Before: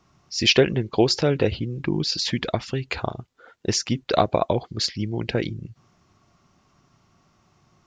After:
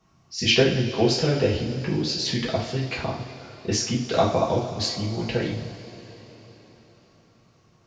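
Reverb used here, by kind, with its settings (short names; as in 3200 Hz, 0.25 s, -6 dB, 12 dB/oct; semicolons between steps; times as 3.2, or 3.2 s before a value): two-slope reverb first 0.45 s, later 4.5 s, from -18 dB, DRR -5.5 dB; gain -7.5 dB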